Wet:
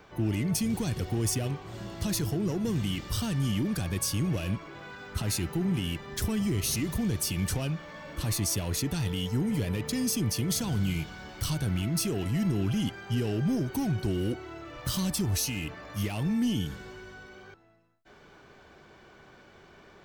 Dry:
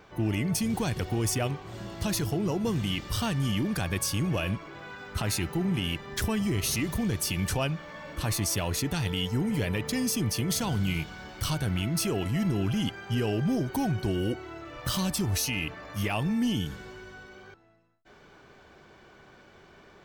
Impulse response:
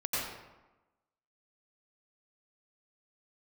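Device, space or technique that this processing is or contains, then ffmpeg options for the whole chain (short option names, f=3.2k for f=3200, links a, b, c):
one-band saturation: -filter_complex "[0:a]acrossover=split=410|3700[a][b][c];[b]asoftclip=type=tanh:threshold=-39dB[d];[a][d][c]amix=inputs=3:normalize=0"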